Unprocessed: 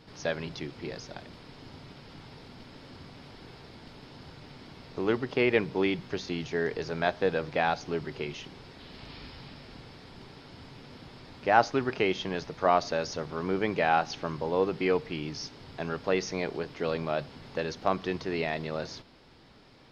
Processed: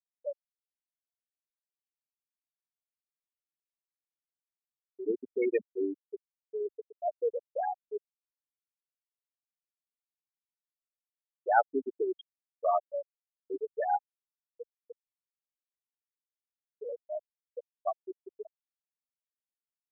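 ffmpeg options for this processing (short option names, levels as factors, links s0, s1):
-filter_complex "[0:a]asettb=1/sr,asplit=3[s0][s1][s2];[s0]atrim=end=13.964[s3];[s1]atrim=start=13.96:end=16.82,asetpts=PTS-STARTPTS,afade=t=in:d=0.004:c=qsin,afade=t=out:st=2.856:d=0.004:c=qsin,equalizer=f=500:t=o:w=1.4:g=-10[s4];[s2]atrim=start=16.816[s5];[s3][s4]acrossfade=d=0.004:c1=hsin:c2=qsin[s6];[s6][s5]acrossfade=d=0.004:c1=qsin:c2=hsin,aemphasis=mode=production:type=cd,afftfilt=real='re*gte(hypot(re,im),0.282)':imag='im*gte(hypot(re,im),0.282)':win_size=1024:overlap=0.75,equalizer=f=87:w=2.4:g=-12,volume=0.841"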